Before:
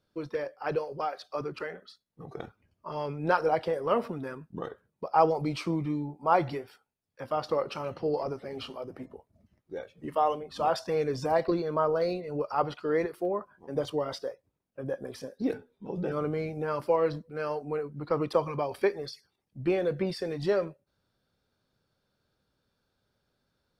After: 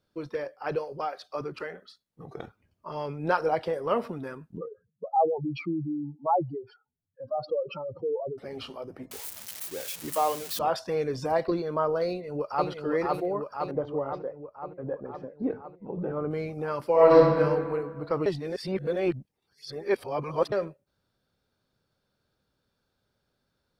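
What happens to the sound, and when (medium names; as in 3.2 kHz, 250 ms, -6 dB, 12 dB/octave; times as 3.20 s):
4.57–8.38 s: spectral contrast enhancement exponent 3.1
9.11–10.59 s: zero-crossing glitches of -25 dBFS
12.07–12.69 s: echo throw 510 ms, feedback 70%, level -2 dB
13.71–16.31 s: low-pass 1.3 kHz
16.92–17.38 s: reverb throw, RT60 1.8 s, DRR -10.5 dB
18.26–20.52 s: reverse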